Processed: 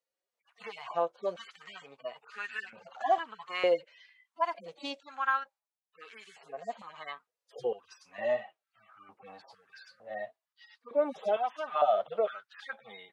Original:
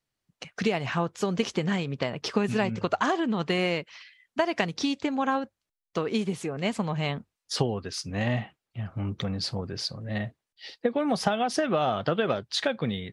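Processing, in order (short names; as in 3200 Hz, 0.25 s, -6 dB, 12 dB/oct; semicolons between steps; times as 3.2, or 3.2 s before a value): median-filter separation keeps harmonic; stepped high-pass 2.2 Hz 500–1600 Hz; gain -5 dB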